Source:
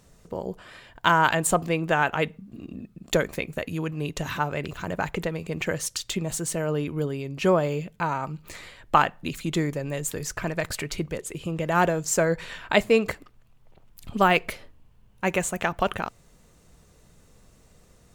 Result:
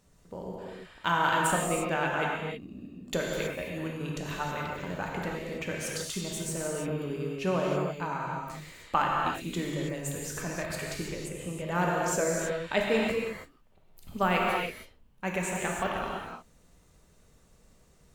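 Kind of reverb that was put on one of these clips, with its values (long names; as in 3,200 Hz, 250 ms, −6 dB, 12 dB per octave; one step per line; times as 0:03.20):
reverb whose tail is shaped and stops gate 350 ms flat, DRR −2.5 dB
level −9 dB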